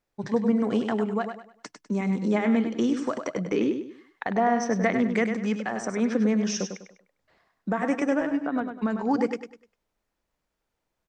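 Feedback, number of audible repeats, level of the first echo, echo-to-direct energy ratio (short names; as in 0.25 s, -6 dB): 32%, 3, -7.5 dB, -7.0 dB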